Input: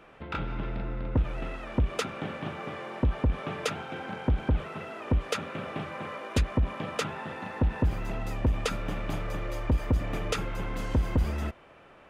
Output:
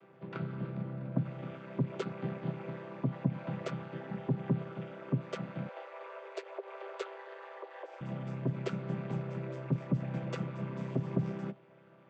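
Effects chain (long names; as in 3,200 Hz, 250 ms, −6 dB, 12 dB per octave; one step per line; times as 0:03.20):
channel vocoder with a chord as carrier major triad, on C3
0:05.69–0:08.01: Butterworth high-pass 390 Hz 72 dB per octave
level −1.5 dB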